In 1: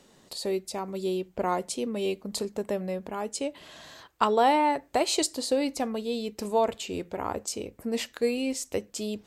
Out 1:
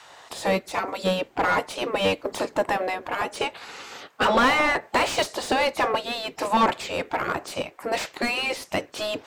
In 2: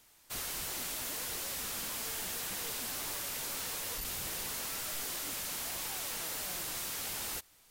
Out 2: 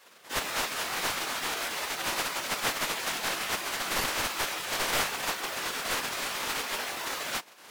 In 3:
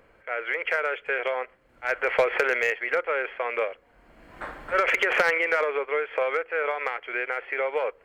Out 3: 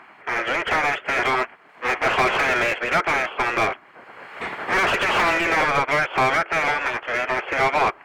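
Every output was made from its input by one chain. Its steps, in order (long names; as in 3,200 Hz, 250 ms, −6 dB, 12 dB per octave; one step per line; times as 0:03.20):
gate on every frequency bin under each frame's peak −10 dB weak
mid-hump overdrive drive 35 dB, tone 1,200 Hz, clips at −6.5 dBFS
expander for the loud parts 1.5 to 1, over −29 dBFS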